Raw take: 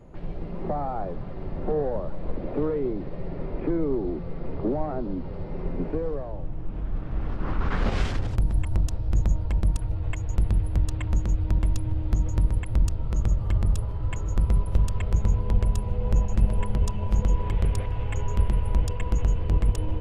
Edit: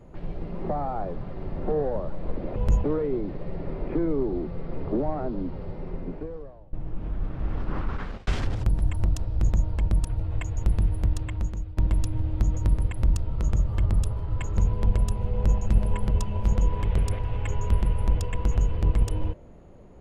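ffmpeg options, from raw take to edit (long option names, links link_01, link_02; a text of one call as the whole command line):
ffmpeg -i in.wav -filter_complex "[0:a]asplit=7[link_01][link_02][link_03][link_04][link_05][link_06][link_07];[link_01]atrim=end=2.562[link_08];[link_02]atrim=start=15.998:end=16.282[link_09];[link_03]atrim=start=2.558:end=6.45,asetpts=PTS-STARTPTS,afade=type=out:start_time=2.632:duration=1.26:silence=0.0891251[link_10];[link_04]atrim=start=6.45:end=7.99,asetpts=PTS-STARTPTS,afade=type=in:duration=0.004:curve=hsin:silence=0.0891251,afade=type=out:start_time=0.98:duration=0.56[link_11];[link_05]atrim=start=7.99:end=11.49,asetpts=PTS-STARTPTS,afade=type=in:duration=0.004:curve=hsin,afade=type=out:start_time=2.56:duration=0.94:curve=qsin:silence=0.16788[link_12];[link_06]atrim=start=11.49:end=14.292,asetpts=PTS-STARTPTS,afade=type=in:duration=0.004:curve=hsin:silence=0.16788[link_13];[link_07]atrim=start=15.238[link_14];[link_08][link_09]acrossfade=duration=0.004:curve1=hsin:curve2=hsin[link_15];[link_10][link_11][link_12][link_13]concat=n=4:v=0:a=1[link_16];[link_15][link_16]acrossfade=duration=0.004:curve1=hsin:curve2=hsin[link_17];[link_17][link_14]acrossfade=duration=0.004:curve1=hsin:curve2=hsin" out.wav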